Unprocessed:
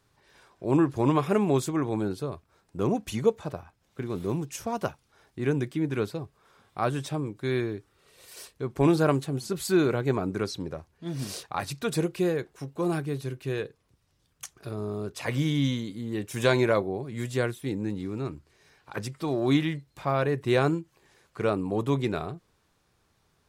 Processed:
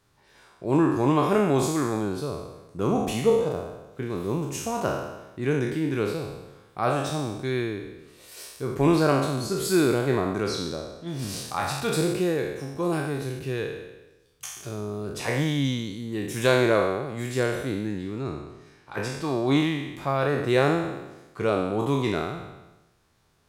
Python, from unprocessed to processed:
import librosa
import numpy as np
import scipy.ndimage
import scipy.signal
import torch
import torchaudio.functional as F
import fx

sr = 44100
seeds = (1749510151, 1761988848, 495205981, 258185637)

y = fx.spec_trails(x, sr, decay_s=1.06)
y = fx.high_shelf(y, sr, hz=11000.0, db=-8.0, at=(17.55, 19.57))